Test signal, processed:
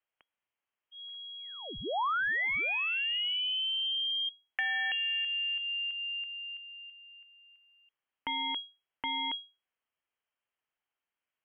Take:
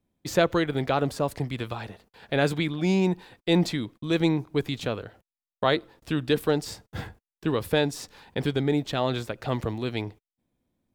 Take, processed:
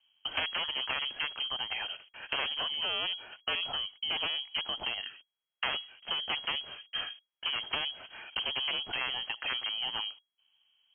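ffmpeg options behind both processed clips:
-filter_complex "[0:a]aeval=exprs='0.473*(cos(1*acos(clip(val(0)/0.473,-1,1)))-cos(1*PI/2))+0.133*(cos(2*acos(clip(val(0)/0.473,-1,1)))-cos(2*PI/2))+0.106*(cos(3*acos(clip(val(0)/0.473,-1,1)))-cos(3*PI/2))+0.00473*(cos(6*acos(clip(val(0)/0.473,-1,1)))-cos(6*PI/2))+0.15*(cos(7*acos(clip(val(0)/0.473,-1,1)))-cos(7*PI/2))':c=same,lowpass=f=2.8k:t=q:w=0.5098,lowpass=f=2.8k:t=q:w=0.6013,lowpass=f=2.8k:t=q:w=0.9,lowpass=f=2.8k:t=q:w=2.563,afreqshift=-3300,acrossover=split=480|1100[a][b][c];[a]acompressor=threshold=-48dB:ratio=4[d];[b]acompressor=threshold=-40dB:ratio=4[e];[c]acompressor=threshold=-34dB:ratio=4[f];[d][e][f]amix=inputs=3:normalize=0"

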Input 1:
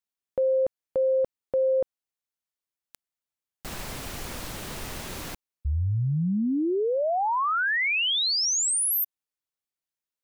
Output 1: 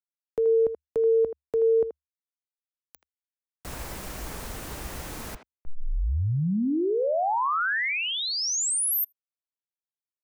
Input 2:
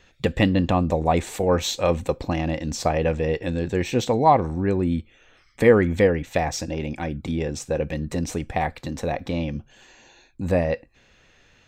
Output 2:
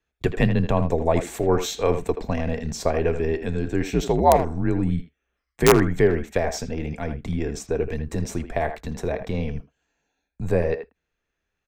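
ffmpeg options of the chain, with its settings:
-filter_complex "[0:a]agate=range=-22dB:threshold=-46dB:ratio=16:release=43:detection=rms,afreqshift=-74,aeval=exprs='(mod(1.58*val(0)+1,2)-1)/1.58':c=same,equalizer=f=3.5k:t=o:w=1.5:g=-5,asplit=2[a][b];[b]adelay=80,highpass=300,lowpass=3.4k,asoftclip=type=hard:threshold=-12dB,volume=-9dB[c];[a][c]amix=inputs=2:normalize=0"

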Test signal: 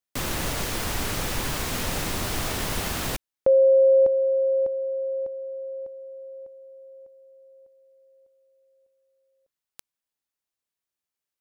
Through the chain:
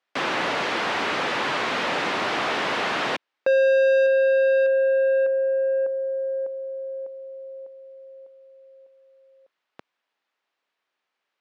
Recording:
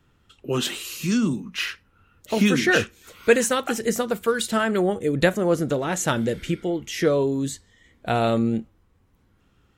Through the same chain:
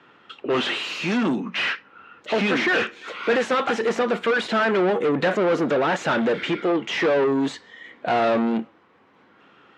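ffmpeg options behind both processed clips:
-filter_complex "[0:a]asplit=2[a][b];[b]highpass=f=720:p=1,volume=32dB,asoftclip=type=tanh:threshold=-4.5dB[c];[a][c]amix=inputs=2:normalize=0,lowpass=f=2.4k:p=1,volume=-6dB,highpass=190,lowpass=3.6k,volume=-7.5dB"

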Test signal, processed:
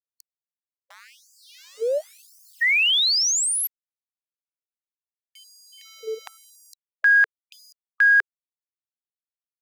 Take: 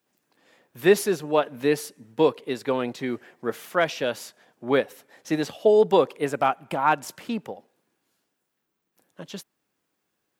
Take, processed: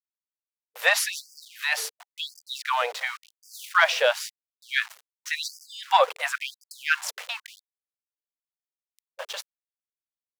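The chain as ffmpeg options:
-filter_complex "[0:a]aeval=exprs='val(0)*gte(abs(val(0)),0.00891)':c=same,asplit=2[a][b];[b]highpass=f=720:p=1,volume=11dB,asoftclip=type=tanh:threshold=-4.5dB[c];[a][c]amix=inputs=2:normalize=0,lowpass=f=5.2k:p=1,volume=-6dB,afftfilt=real='re*gte(b*sr/1024,420*pow(4700/420,0.5+0.5*sin(2*PI*0.94*pts/sr)))':imag='im*gte(b*sr/1024,420*pow(4700/420,0.5+0.5*sin(2*PI*0.94*pts/sr)))':win_size=1024:overlap=0.75,volume=3dB"

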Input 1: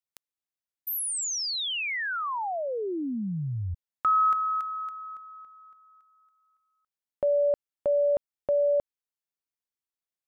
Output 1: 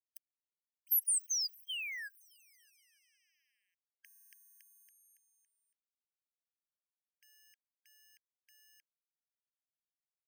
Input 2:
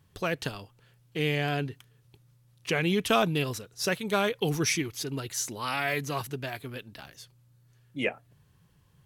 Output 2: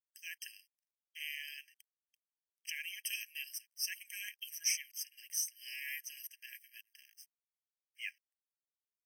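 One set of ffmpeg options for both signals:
-af "aeval=exprs='sgn(val(0))*max(abs(val(0))-0.00237,0)':c=same,aderivative,afftfilt=real='re*eq(mod(floor(b*sr/1024/1600),2),1)':imag='im*eq(mod(floor(b*sr/1024/1600),2),1)':win_size=1024:overlap=0.75"

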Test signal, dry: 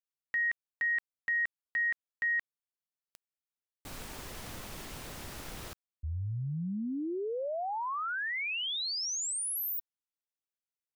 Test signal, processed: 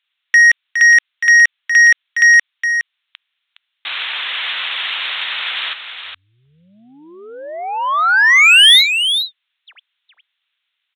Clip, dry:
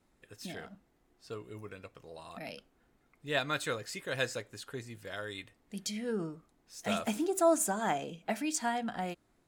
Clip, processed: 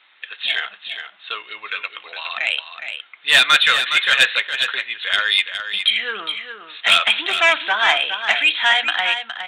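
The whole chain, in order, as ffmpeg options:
-filter_complex "[0:a]asplit=2[a][b];[b]aeval=exprs='0.168*sin(PI/2*2.82*val(0)/0.168)':c=same,volume=-6dB[c];[a][c]amix=inputs=2:normalize=0,crystalizer=i=9:c=0,highpass=1.4k,aresample=8000,aresample=44100,asoftclip=type=tanh:threshold=-13.5dB,asplit=2[d][e];[e]aecho=0:1:414:0.376[f];[d][f]amix=inputs=2:normalize=0,volume=9dB"

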